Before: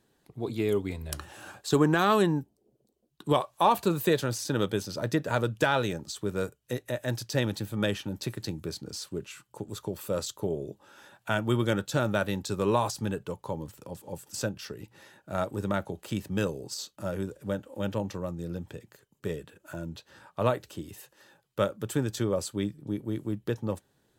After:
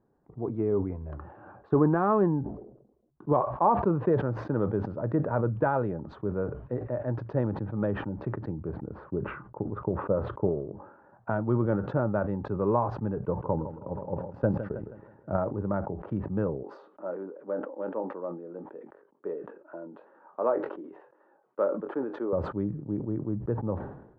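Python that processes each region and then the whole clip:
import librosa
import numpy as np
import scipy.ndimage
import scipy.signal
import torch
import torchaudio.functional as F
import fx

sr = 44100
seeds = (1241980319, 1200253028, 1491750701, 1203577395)

y = fx.chain(x, sr, fx.lowpass(hz=2100.0, slope=12),
    fx.transient(attack_db=5, sustain_db=-4), at=(8.69, 11.3))
y = fx.chain(y, sr, fx.transient(attack_db=7, sustain_db=-5),
    fx.echo_feedback(ms=160, feedback_pct=51, wet_db=-14.0), at=(13.17, 15.37))
y = fx.chain(y, sr, fx.highpass(hz=290.0, slope=24),
    fx.doubler(ms=22.0, db=-12.5), at=(16.63, 22.33))
y = scipy.signal.sosfilt(scipy.signal.butter(4, 1200.0, 'lowpass', fs=sr, output='sos'), y)
y = fx.sustainer(y, sr, db_per_s=72.0)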